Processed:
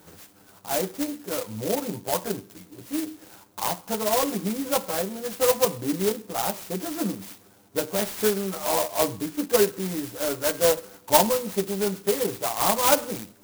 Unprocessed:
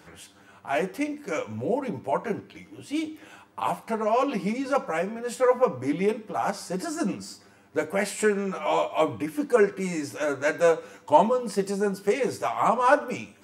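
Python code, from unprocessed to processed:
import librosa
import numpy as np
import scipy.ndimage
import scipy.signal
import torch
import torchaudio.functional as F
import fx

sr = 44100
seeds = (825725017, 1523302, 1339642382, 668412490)

y = fx.clock_jitter(x, sr, seeds[0], jitter_ms=0.13)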